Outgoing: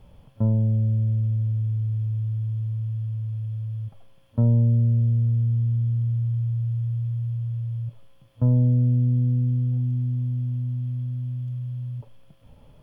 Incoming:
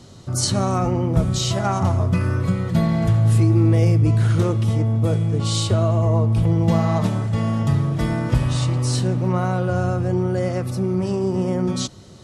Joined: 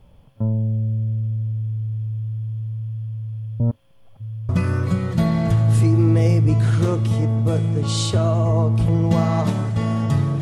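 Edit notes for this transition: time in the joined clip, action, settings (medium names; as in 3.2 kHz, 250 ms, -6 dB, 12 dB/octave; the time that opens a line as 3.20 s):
outgoing
3.60–4.49 s: reverse
4.49 s: go over to incoming from 2.06 s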